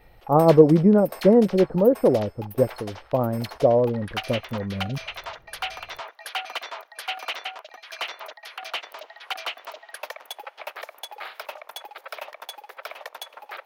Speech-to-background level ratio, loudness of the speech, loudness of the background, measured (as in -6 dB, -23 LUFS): 16.0 dB, -20.0 LUFS, -36.0 LUFS